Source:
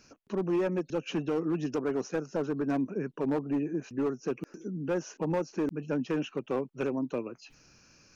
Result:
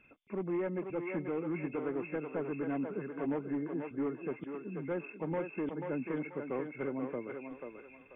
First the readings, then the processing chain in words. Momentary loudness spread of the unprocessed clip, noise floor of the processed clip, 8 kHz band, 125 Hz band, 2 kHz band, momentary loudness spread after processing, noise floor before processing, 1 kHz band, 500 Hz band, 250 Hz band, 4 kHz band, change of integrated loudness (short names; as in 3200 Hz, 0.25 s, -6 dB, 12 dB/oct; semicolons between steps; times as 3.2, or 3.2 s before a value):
6 LU, -57 dBFS, n/a, -6.0 dB, -2.0 dB, 6 LU, -62 dBFS, -4.5 dB, -5.0 dB, -5.5 dB, under -15 dB, -5.5 dB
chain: nonlinear frequency compression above 2000 Hz 4:1; thinning echo 0.487 s, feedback 36%, high-pass 400 Hz, level -3.5 dB; gain -6 dB